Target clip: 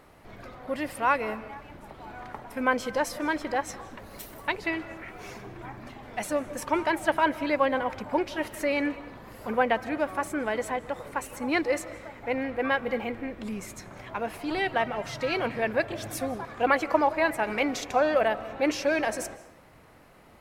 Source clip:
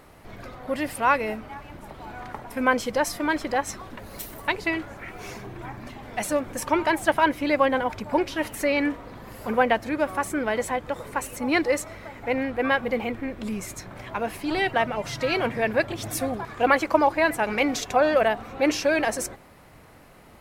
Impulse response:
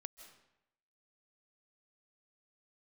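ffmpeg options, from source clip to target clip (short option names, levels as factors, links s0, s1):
-filter_complex "[0:a]asplit=2[s0][s1];[s1]lowpass=f=3800:p=1[s2];[1:a]atrim=start_sample=2205,lowshelf=f=160:g=-7[s3];[s2][s3]afir=irnorm=-1:irlink=0,volume=1.88[s4];[s0][s4]amix=inputs=2:normalize=0,volume=0.355"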